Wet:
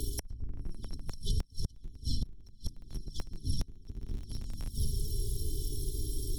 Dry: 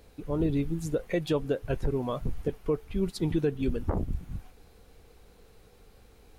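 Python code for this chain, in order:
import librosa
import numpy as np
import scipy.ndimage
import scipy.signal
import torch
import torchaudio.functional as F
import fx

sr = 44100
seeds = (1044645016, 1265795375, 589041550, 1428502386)

p1 = fx.bit_reversed(x, sr, seeds[0], block=256)
p2 = fx.env_lowpass_down(p1, sr, base_hz=820.0, full_db=-23.0)
p3 = fx.comb_fb(p2, sr, f0_hz=86.0, decay_s=0.28, harmonics='odd', damping=0.0, mix_pct=30, at=(1.07, 1.98))
p4 = p3 + fx.echo_diffused(p3, sr, ms=521, feedback_pct=49, wet_db=-8.5, dry=0)
p5 = fx.env_flanger(p4, sr, rest_ms=3.0, full_db=-28.0)
p6 = fx.brickwall_bandstop(p5, sr, low_hz=440.0, high_hz=3000.0)
p7 = fx.schmitt(p6, sr, flips_db=-35.0)
p8 = p6 + (p7 * librosa.db_to_amplitude(-9.0))
p9 = fx.gate_flip(p8, sr, shuts_db=-34.0, range_db=-33)
p10 = fx.band_squash(p9, sr, depth_pct=100)
y = p10 * librosa.db_to_amplitude(18.0)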